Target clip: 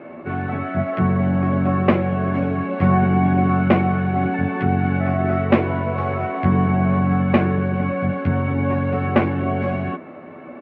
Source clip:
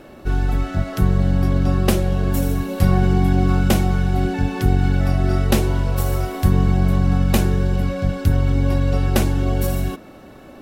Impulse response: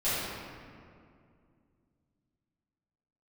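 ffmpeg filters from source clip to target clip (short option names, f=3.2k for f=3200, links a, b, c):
-filter_complex "[0:a]highpass=f=110:w=0.5412,highpass=f=110:w=1.3066,equalizer=f=230:t=q:w=4:g=5,equalizer=f=370:t=q:w=4:g=4,equalizer=f=610:t=q:w=4:g=7,equalizer=f=1.1k:t=q:w=4:g=7,equalizer=f=2.2k:t=q:w=4:g=8,lowpass=f=2.4k:w=0.5412,lowpass=f=2.4k:w=1.3066,asplit=2[a][b];[b]adelay=12,volume=-3.5dB[c];[a][c]amix=inputs=2:normalize=0,volume=-1dB"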